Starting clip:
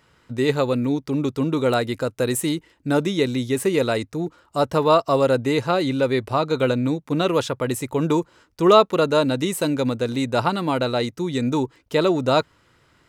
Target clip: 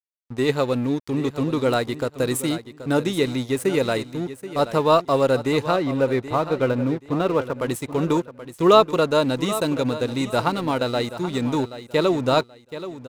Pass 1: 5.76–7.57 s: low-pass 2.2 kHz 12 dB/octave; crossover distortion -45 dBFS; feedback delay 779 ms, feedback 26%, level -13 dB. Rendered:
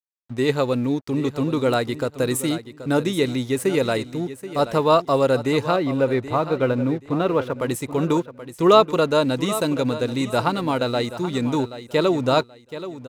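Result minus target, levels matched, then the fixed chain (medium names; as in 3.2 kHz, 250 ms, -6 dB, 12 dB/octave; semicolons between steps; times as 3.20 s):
crossover distortion: distortion -8 dB
5.76–7.57 s: low-pass 2.2 kHz 12 dB/octave; crossover distortion -37 dBFS; feedback delay 779 ms, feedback 26%, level -13 dB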